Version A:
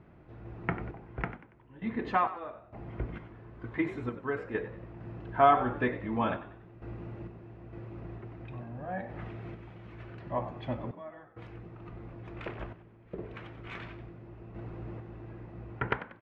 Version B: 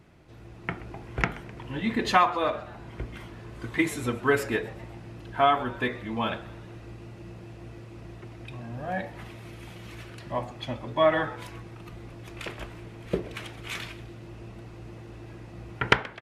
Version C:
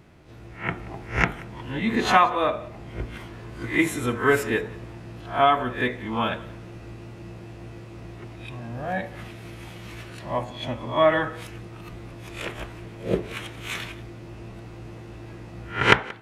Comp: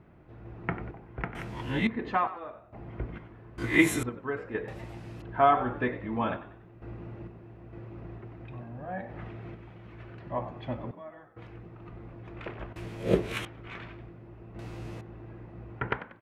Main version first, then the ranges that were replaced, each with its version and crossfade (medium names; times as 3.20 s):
A
1.35–1.87 s: from C
3.58–4.03 s: from C
4.68–5.22 s: from B
12.76–13.45 s: from C
14.59–15.01 s: from C